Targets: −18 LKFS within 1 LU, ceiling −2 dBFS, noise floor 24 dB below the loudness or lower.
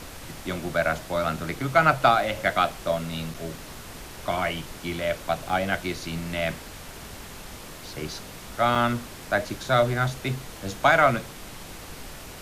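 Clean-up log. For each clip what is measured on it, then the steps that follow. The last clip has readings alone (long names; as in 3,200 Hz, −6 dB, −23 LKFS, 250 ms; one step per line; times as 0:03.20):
number of dropouts 3; longest dropout 4.8 ms; background noise floor −42 dBFS; target noise floor −50 dBFS; integrated loudness −25.5 LKFS; sample peak −5.0 dBFS; target loudness −18.0 LKFS
→ repair the gap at 0:03.34/0:05.49/0:08.75, 4.8 ms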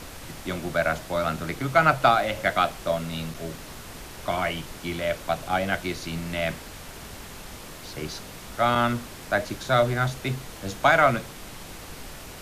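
number of dropouts 0; background noise floor −42 dBFS; target noise floor −50 dBFS
→ noise reduction from a noise print 8 dB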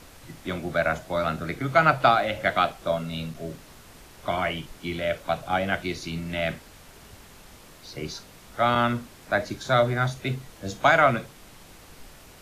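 background noise floor −49 dBFS; target noise floor −50 dBFS
→ noise reduction from a noise print 6 dB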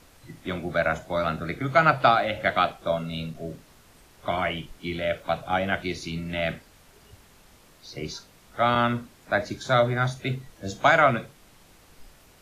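background noise floor −55 dBFS; integrated loudness −25.5 LKFS; sample peak −5.0 dBFS; target loudness −18.0 LKFS
→ level +7.5 dB
brickwall limiter −2 dBFS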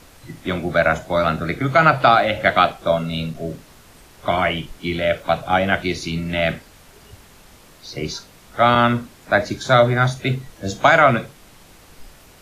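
integrated loudness −18.5 LKFS; sample peak −2.0 dBFS; background noise floor −48 dBFS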